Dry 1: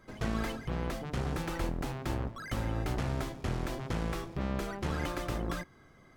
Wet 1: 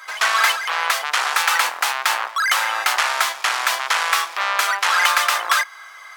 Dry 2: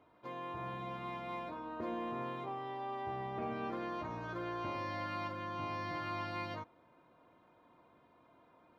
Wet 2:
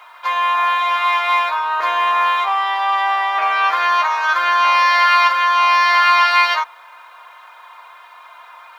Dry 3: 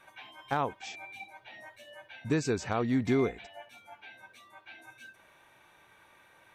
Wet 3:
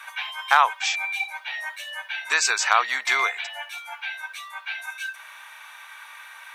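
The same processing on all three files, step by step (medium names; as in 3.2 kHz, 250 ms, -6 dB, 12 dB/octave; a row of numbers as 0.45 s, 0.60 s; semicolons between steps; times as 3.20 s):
high-pass 1 kHz 24 dB/octave; peak normalisation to -2 dBFS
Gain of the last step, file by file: +25.0 dB, +30.5 dB, +18.5 dB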